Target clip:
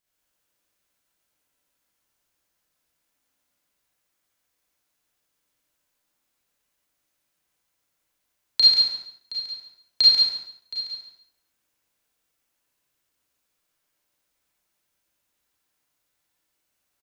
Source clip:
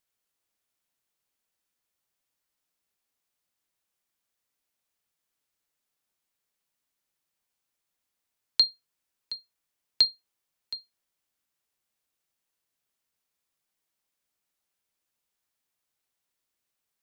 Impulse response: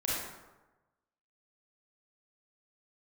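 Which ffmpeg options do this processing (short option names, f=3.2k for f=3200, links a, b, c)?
-filter_complex "[0:a]aecho=1:1:140|280|420:0.668|0.16|0.0385[a];[1:a]atrim=start_sample=2205,afade=t=out:st=0.36:d=0.01,atrim=end_sample=16317[b];[a][b]afir=irnorm=-1:irlink=0"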